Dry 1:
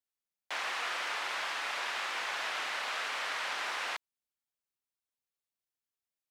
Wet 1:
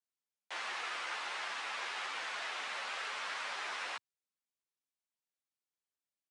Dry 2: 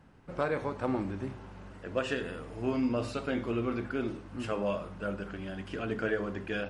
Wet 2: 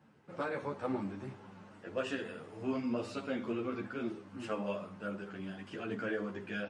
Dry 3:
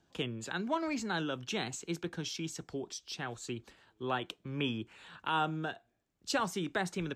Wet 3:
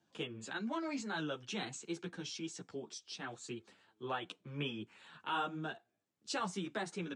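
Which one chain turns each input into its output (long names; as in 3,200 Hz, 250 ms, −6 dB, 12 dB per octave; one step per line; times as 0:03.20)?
high-pass filter 110 Hz 24 dB per octave
downsampling to 22,050 Hz
string-ensemble chorus
level −1.5 dB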